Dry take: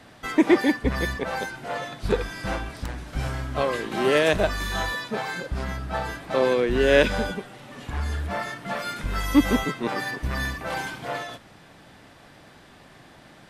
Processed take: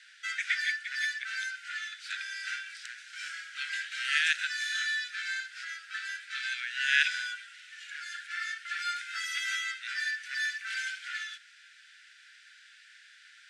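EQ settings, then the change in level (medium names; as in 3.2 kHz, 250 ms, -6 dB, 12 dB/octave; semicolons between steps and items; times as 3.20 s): Chebyshev high-pass 1.4 kHz, order 8; low-pass 8.4 kHz 24 dB/octave; 0.0 dB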